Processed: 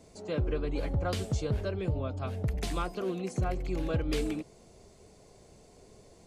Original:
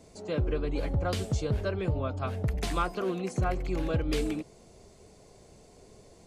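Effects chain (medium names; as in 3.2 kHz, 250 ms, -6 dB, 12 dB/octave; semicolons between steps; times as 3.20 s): 1.56–3.89 s: dynamic bell 1.3 kHz, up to -5 dB, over -43 dBFS, Q 0.86; trim -1.5 dB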